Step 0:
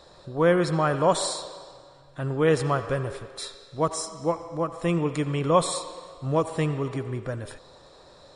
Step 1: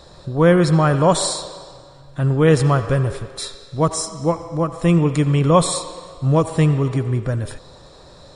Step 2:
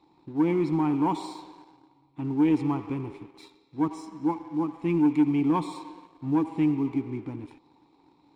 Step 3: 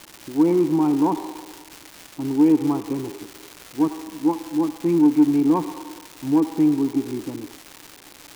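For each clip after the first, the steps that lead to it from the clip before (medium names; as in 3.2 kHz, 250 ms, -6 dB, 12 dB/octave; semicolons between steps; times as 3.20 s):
tone controls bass +8 dB, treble +3 dB; trim +5 dB
vowel filter u; waveshaping leveller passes 1
band-pass filter 430 Hz, Q 0.82; crackle 520 per s -36 dBFS; trim +7.5 dB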